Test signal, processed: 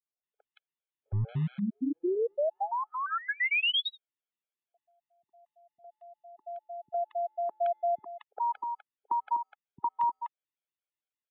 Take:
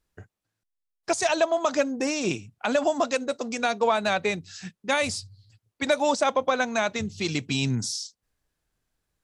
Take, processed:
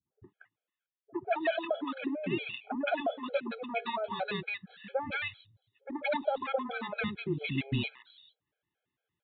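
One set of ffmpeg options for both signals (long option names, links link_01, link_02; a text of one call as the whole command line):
ffmpeg -i in.wav -filter_complex "[0:a]acrossover=split=100[link_01][link_02];[link_01]acrusher=bits=3:dc=4:mix=0:aa=0.000001[link_03];[link_03][link_02]amix=inputs=2:normalize=0,aresample=8000,aresample=44100,acompressor=threshold=-23dB:ratio=6,acrossover=split=240|1100[link_04][link_05][link_06];[link_05]adelay=60[link_07];[link_06]adelay=230[link_08];[link_04][link_07][link_08]amix=inputs=3:normalize=0,afftfilt=real='re*gt(sin(2*PI*4.4*pts/sr)*(1-2*mod(floor(b*sr/1024/430),2)),0)':imag='im*gt(sin(2*PI*4.4*pts/sr)*(1-2*mod(floor(b*sr/1024/430),2)),0)':win_size=1024:overlap=0.75" out.wav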